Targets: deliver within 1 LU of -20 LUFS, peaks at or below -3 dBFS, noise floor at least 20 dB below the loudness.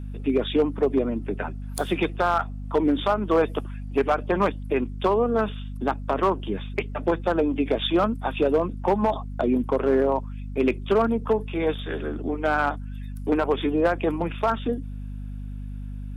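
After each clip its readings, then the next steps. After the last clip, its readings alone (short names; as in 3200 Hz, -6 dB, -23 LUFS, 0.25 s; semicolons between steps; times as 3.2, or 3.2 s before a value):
clipped 0.6%; flat tops at -13.5 dBFS; hum 50 Hz; harmonics up to 250 Hz; hum level -31 dBFS; loudness -24.5 LUFS; peak -13.5 dBFS; loudness target -20.0 LUFS
-> clip repair -13.5 dBFS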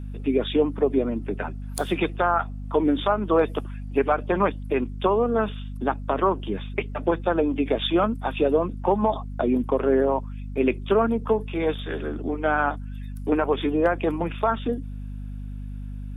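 clipped 0.0%; hum 50 Hz; harmonics up to 250 Hz; hum level -31 dBFS
-> notches 50/100/150/200/250 Hz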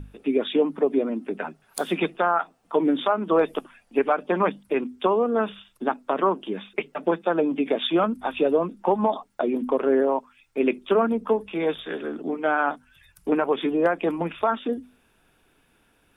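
hum none; loudness -24.5 LUFS; peak -9.0 dBFS; loudness target -20.0 LUFS
-> gain +4.5 dB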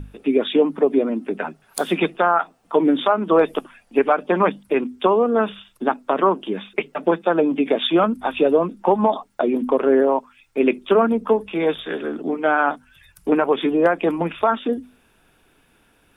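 loudness -20.0 LUFS; peak -4.5 dBFS; noise floor -59 dBFS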